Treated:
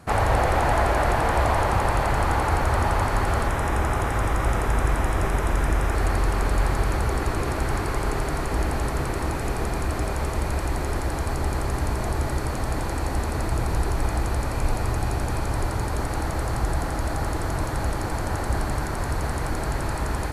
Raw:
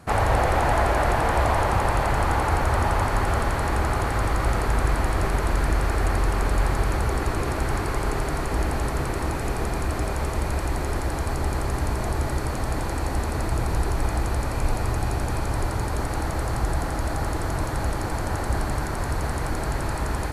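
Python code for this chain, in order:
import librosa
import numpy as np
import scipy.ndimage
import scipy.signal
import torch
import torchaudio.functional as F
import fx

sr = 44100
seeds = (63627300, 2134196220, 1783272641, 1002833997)

y = fx.notch(x, sr, hz=4400.0, q=5.2, at=(3.47, 5.95))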